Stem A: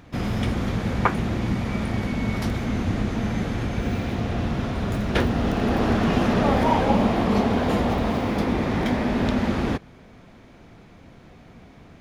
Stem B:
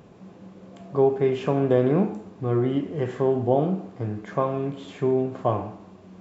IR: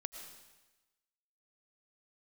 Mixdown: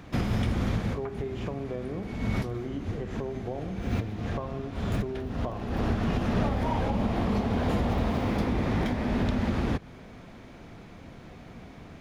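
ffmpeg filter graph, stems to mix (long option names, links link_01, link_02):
-filter_complex "[0:a]acrossover=split=140[link_01][link_02];[link_02]acompressor=threshold=-29dB:ratio=3[link_03];[link_01][link_03]amix=inputs=2:normalize=0,volume=1.5dB[link_04];[1:a]acompressor=threshold=-25dB:ratio=6,volume=-6.5dB,asplit=2[link_05][link_06];[link_06]apad=whole_len=529560[link_07];[link_04][link_07]sidechaincompress=threshold=-48dB:ratio=10:attack=30:release=144[link_08];[link_08][link_05]amix=inputs=2:normalize=0,alimiter=limit=-17dB:level=0:latency=1:release=275"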